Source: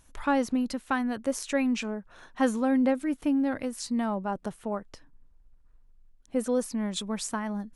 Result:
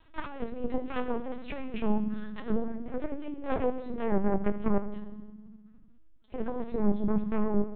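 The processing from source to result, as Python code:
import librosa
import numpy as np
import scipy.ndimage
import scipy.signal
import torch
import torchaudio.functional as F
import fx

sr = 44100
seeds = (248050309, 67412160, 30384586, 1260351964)

p1 = fx.vibrato(x, sr, rate_hz=6.7, depth_cents=17.0)
p2 = fx.hum_notches(p1, sr, base_hz=50, count=3)
p3 = fx.over_compress(p2, sr, threshold_db=-30.0, ratio=-0.5)
p4 = fx.env_lowpass_down(p3, sr, base_hz=550.0, full_db=-25.5)
p5 = fx.cheby_harmonics(p4, sr, harmonics=(3, 4, 6, 8), levels_db=(-30, -8, -29, -37), full_scale_db=-17.5)
p6 = p5 + fx.room_early_taps(p5, sr, ms=(20, 74), db=(-9.5, -17.0), dry=0)
p7 = fx.rev_fdn(p6, sr, rt60_s=1.3, lf_ratio=1.55, hf_ratio=0.8, size_ms=29.0, drr_db=7.5)
y = fx.lpc_vocoder(p7, sr, seeds[0], excitation='pitch_kept', order=10)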